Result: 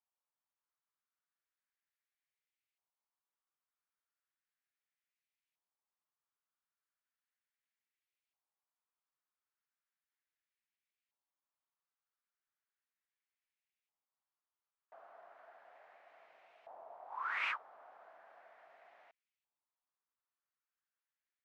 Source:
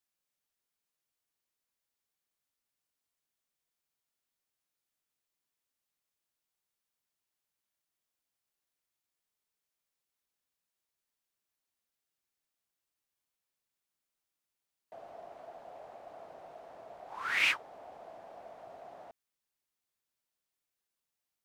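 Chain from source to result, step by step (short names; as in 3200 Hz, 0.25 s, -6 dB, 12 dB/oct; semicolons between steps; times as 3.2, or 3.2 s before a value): LFO band-pass saw up 0.36 Hz 850–2500 Hz; gain +1.5 dB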